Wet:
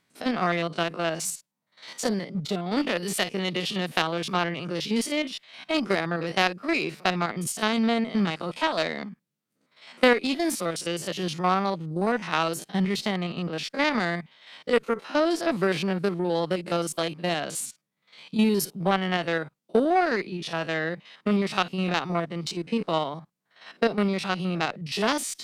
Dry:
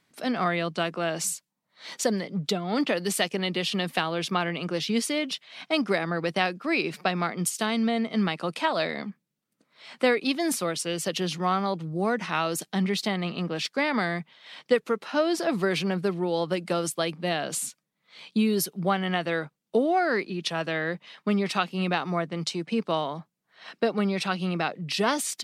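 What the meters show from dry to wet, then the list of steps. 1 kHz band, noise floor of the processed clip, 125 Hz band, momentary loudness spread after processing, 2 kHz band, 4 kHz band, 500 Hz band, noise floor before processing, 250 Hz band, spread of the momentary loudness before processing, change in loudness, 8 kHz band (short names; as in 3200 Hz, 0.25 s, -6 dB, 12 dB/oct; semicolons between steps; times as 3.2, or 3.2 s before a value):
+1.0 dB, -76 dBFS, +0.5 dB, 7 LU, +1.0 dB, +0.5 dB, +0.5 dB, -79 dBFS, +1.0 dB, 5 LU, +0.5 dB, -1.5 dB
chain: stepped spectrum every 50 ms; added harmonics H 2 -19 dB, 3 -22 dB, 5 -33 dB, 7 -26 dB, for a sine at -8.5 dBFS; gain +5.5 dB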